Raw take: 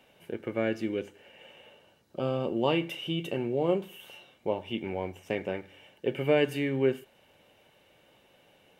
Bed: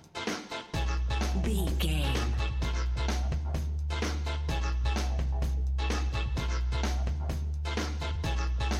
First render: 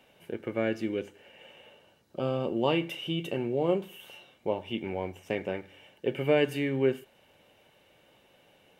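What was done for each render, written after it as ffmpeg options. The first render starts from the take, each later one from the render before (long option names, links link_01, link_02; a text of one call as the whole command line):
ffmpeg -i in.wav -af anull out.wav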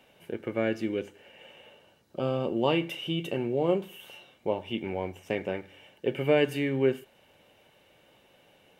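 ffmpeg -i in.wav -af "volume=1dB" out.wav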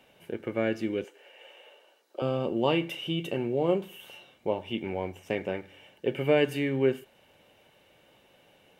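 ffmpeg -i in.wav -filter_complex "[0:a]asettb=1/sr,asplit=3[link_01][link_02][link_03];[link_01]atrim=end=1.044[link_04];[link_02]atrim=start=1.04:end=2.22,asetpts=PTS-STARTPTS,afade=type=in:duration=0.004:curve=qsin,afade=type=out:start_time=1.176:duration=0.004:curve=qsin,highpass=frequency=370:width=0.5412,highpass=frequency=370:width=1.3066[link_05];[link_03]atrim=start=2.216[link_06];[link_04][link_05]acrossfade=duration=0.004:curve1=hsin:curve2=qsin[link_07];[link_07][link_06]acrossfade=duration=0.004:curve1=qsin:curve2=hsin" out.wav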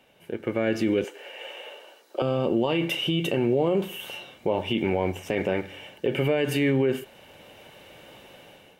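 ffmpeg -i in.wav -af "dynaudnorm=framelen=230:gausssize=5:maxgain=12.5dB,alimiter=limit=-14.5dB:level=0:latency=1:release=41" out.wav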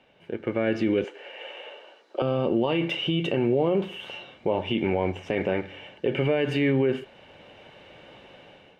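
ffmpeg -i in.wav -af "lowpass=3800" out.wav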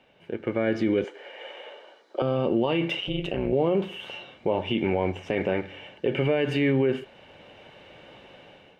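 ffmpeg -i in.wav -filter_complex "[0:a]asettb=1/sr,asplit=3[link_01][link_02][link_03];[link_01]atrim=end=0.554[link_04];[link_02]atrim=start=0.55:end=2.36,asetpts=PTS-STARTPTS,afade=type=in:duration=0.004:curve=qsin,afade=type=out:start_time=1.806:duration=0.004:curve=qsin,bandreject=frequency=2700:width=8.3[link_05];[link_03]atrim=start=2.356[link_06];[link_04][link_05]acrossfade=duration=0.004:curve1=hsin:curve2=qsin[link_07];[link_07][link_06]acrossfade=duration=0.004:curve1=qsin:curve2=hsin,asettb=1/sr,asplit=3[link_08][link_09][link_10];[link_08]atrim=end=3.004[link_11];[link_09]atrim=start=3:end=3.53,asetpts=PTS-STARTPTS,afade=type=in:duration=0.004:curve=qsin,afade=type=out:start_time=0.526:duration=0.004:curve=qsin,tremolo=f=190:d=0.889[link_12];[link_10]atrim=start=3.526[link_13];[link_11][link_12]acrossfade=duration=0.004:curve1=hsin:curve2=qsin[link_14];[link_14][link_13]acrossfade=duration=0.004:curve1=qsin:curve2=hsin" out.wav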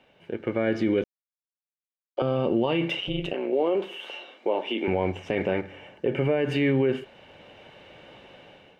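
ffmpeg -i in.wav -filter_complex "[0:a]asettb=1/sr,asplit=3[link_01][link_02][link_03];[link_01]atrim=end=3.334[link_04];[link_02]atrim=start=3.33:end=4.88,asetpts=PTS-STARTPTS,afade=type=in:duration=0.004:curve=qsin,afade=type=out:start_time=1.546:duration=0.004:curve=qsin,highpass=frequency=280:width=0.5412,highpass=frequency=280:width=1.3066[link_05];[link_03]atrim=start=4.876[link_06];[link_04][link_05]acrossfade=duration=0.004:curve1=hsin:curve2=qsin[link_07];[link_07][link_06]acrossfade=duration=0.004:curve1=qsin:curve2=hsin,asettb=1/sr,asplit=3[link_08][link_09][link_10];[link_08]atrim=end=5.614[link_11];[link_09]atrim=start=5.61:end=6.5,asetpts=PTS-STARTPTS,afade=type=in:duration=0.004:curve=qsin,afade=type=out:start_time=0.886:duration=0.004:curve=qsin,equalizer=frequency=3600:width=1.2:gain=-7.5[link_12];[link_10]atrim=start=6.496[link_13];[link_11][link_12]acrossfade=duration=0.004:curve1=hsin:curve2=qsin[link_14];[link_14][link_13]acrossfade=duration=0.004:curve1=qsin:curve2=hsin,asplit=3[link_15][link_16][link_17];[link_15]atrim=end=1.04,asetpts=PTS-STARTPTS,afade=type=out:start_time=1.036:duration=0.004:curve=hsin[link_18];[link_16]atrim=start=1.04:end=2.17,asetpts=PTS-STARTPTS,volume=0[link_19];[link_17]atrim=start=2.17,asetpts=PTS-STARTPTS,afade=type=in:duration=0.004:curve=hsin[link_20];[link_18][link_19][link_20]concat=n=3:v=0:a=1" out.wav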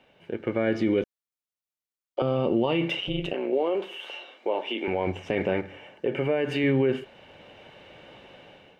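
ffmpeg -i in.wav -filter_complex "[0:a]asettb=1/sr,asplit=3[link_01][link_02][link_03];[link_01]atrim=end=0.744[link_04];[link_02]atrim=start=0.74:end=2.86,asetpts=PTS-STARTPTS,afade=type=in:duration=0.004:curve=qsin,afade=type=out:start_time=2.116:duration=0.004:curve=qsin,bandreject=frequency=1600:width=12[link_05];[link_03]atrim=start=2.856[link_06];[link_04][link_05]acrossfade=duration=0.004:curve1=hsin:curve2=qsin[link_07];[link_07][link_06]acrossfade=duration=0.004:curve1=qsin:curve2=hsin,asettb=1/sr,asplit=3[link_08][link_09][link_10];[link_08]atrim=end=3.584[link_11];[link_09]atrim=start=3.58:end=5.07,asetpts=PTS-STARTPTS,afade=type=in:duration=0.004:curve=qsin,afade=type=out:start_time=1.486:duration=0.004:curve=qsin,equalizer=frequency=110:width=0.42:gain=-7[link_12];[link_10]atrim=start=5.066[link_13];[link_11][link_12]acrossfade=duration=0.004:curve1=hsin:curve2=qsin[link_14];[link_14][link_13]acrossfade=duration=0.004:curve1=qsin:curve2=hsin,asettb=1/sr,asplit=3[link_15][link_16][link_17];[link_15]atrim=end=5.774[link_18];[link_16]atrim=start=5.77:end=6.64,asetpts=PTS-STARTPTS,afade=type=in:duration=0.004:curve=qsin,afade=type=out:start_time=0.866:duration=0.004:curve=qsin,lowshelf=frequency=180:gain=-8[link_19];[link_17]atrim=start=6.636[link_20];[link_18][link_19]acrossfade=duration=0.004:curve1=hsin:curve2=qsin[link_21];[link_21][link_20]acrossfade=duration=0.004:curve1=qsin:curve2=hsin" out.wav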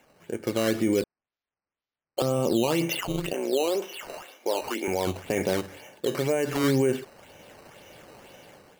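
ffmpeg -i in.wav -af "acrusher=samples=9:mix=1:aa=0.000001:lfo=1:lforange=9:lforate=2" out.wav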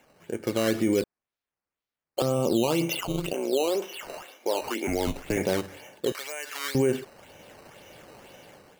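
ffmpeg -i in.wav -filter_complex "[0:a]asettb=1/sr,asplit=3[link_01][link_02][link_03];[link_01]atrim=end=2.344[link_04];[link_02]atrim=start=2.34:end=3.69,asetpts=PTS-STARTPTS,afade=type=in:duration=0.004:curve=qsin,afade=type=out:start_time=1.346:duration=0.004:curve=qsin,equalizer=frequency=1800:width=5:gain=-11[link_05];[link_03]atrim=start=3.686[link_06];[link_04][link_05]acrossfade=duration=0.004:curve1=hsin:curve2=qsin[link_07];[link_07][link_06]acrossfade=duration=0.004:curve1=qsin:curve2=hsin,asettb=1/sr,asplit=3[link_08][link_09][link_10];[link_08]atrim=end=4.874[link_11];[link_09]atrim=start=4.87:end=5.37,asetpts=PTS-STARTPTS,afade=type=in:duration=0.004:curve=qsin,afade=type=out:start_time=0.496:duration=0.004:curve=qsin,afreqshift=-110[link_12];[link_10]atrim=start=5.366[link_13];[link_11][link_12]acrossfade=duration=0.004:curve1=hsin:curve2=qsin[link_14];[link_14][link_13]acrossfade=duration=0.004:curve1=qsin:curve2=hsin,asettb=1/sr,asplit=3[link_15][link_16][link_17];[link_15]atrim=end=6.124[link_18];[link_16]atrim=start=6.12:end=6.75,asetpts=PTS-STARTPTS,afade=type=in:duration=0.004:curve=qsin,afade=type=out:start_time=0.626:duration=0.004:curve=qsin,highpass=1300[link_19];[link_17]atrim=start=6.746[link_20];[link_18][link_19]acrossfade=duration=0.004:curve1=hsin:curve2=qsin[link_21];[link_21][link_20]acrossfade=duration=0.004:curve1=qsin:curve2=hsin" out.wav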